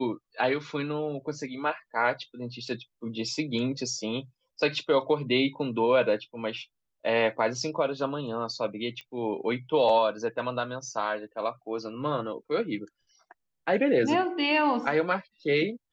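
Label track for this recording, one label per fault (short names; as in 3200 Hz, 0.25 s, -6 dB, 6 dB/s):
9.010000	9.010000	pop -28 dBFS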